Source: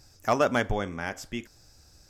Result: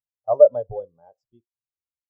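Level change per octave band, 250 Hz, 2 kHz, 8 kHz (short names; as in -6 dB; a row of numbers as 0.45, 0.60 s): under -15 dB, under -30 dB, under -35 dB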